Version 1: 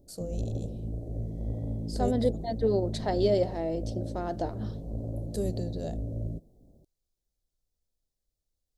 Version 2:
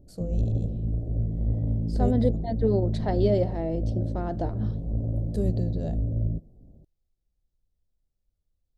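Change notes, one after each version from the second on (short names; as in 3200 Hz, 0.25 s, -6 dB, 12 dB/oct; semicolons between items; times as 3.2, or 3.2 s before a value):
master: add tone controls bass +8 dB, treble -10 dB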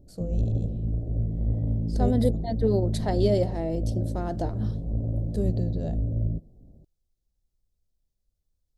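second voice: remove Bessel low-pass 3100 Hz, order 2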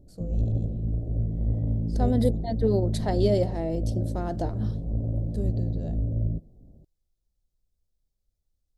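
first voice -5.0 dB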